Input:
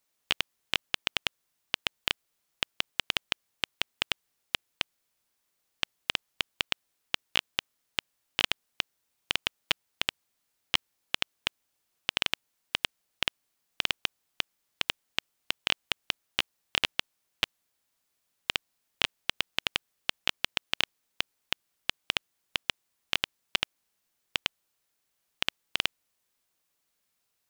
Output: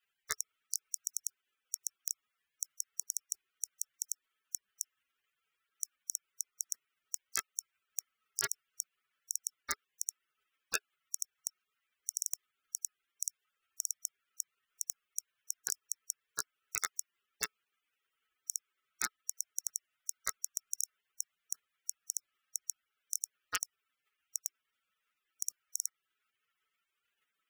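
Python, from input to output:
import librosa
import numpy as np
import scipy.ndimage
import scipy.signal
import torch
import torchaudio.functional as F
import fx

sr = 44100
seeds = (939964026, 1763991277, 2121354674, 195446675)

p1 = fx.spec_gate(x, sr, threshold_db=-20, keep='weak')
p2 = fx.band_shelf(p1, sr, hz=2000.0, db=15.0, octaves=1.7)
p3 = fx.over_compress(p2, sr, threshold_db=-51.0, ratio=-0.5)
p4 = p2 + (p3 * 10.0 ** (-0.5 / 20.0))
p5 = fx.small_body(p4, sr, hz=(420.0, 1300.0), ring_ms=45, db=9)
y = p5 * 10.0 ** (7.5 / 20.0)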